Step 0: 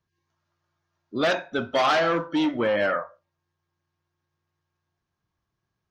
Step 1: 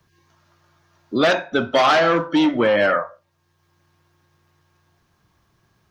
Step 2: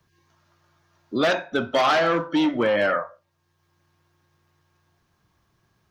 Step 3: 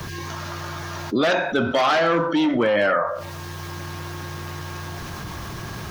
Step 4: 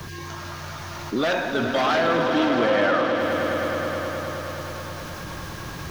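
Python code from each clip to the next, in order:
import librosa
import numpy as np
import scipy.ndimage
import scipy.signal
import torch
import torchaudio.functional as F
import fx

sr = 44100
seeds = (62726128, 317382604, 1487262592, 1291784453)

y1 = fx.band_squash(x, sr, depth_pct=40)
y1 = y1 * librosa.db_to_amplitude(6.0)
y2 = np.clip(10.0 ** (8.0 / 20.0) * y1, -1.0, 1.0) / 10.0 ** (8.0 / 20.0)
y2 = y2 * librosa.db_to_amplitude(-4.0)
y3 = fx.env_flatten(y2, sr, amount_pct=70)
y4 = fx.echo_swell(y3, sr, ms=105, loudest=5, wet_db=-10.5)
y4 = y4 * librosa.db_to_amplitude(-3.5)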